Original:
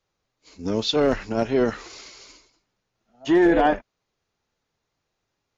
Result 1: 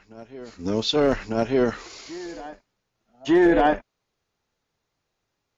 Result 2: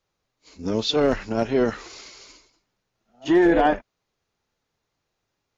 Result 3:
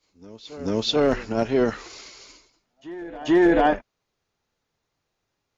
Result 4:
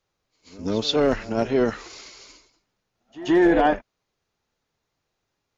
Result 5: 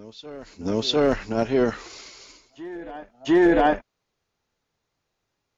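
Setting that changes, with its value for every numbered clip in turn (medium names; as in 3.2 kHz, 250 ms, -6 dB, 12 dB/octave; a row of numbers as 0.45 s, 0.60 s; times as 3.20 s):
reverse echo, time: 1199 ms, 36 ms, 438 ms, 129 ms, 701 ms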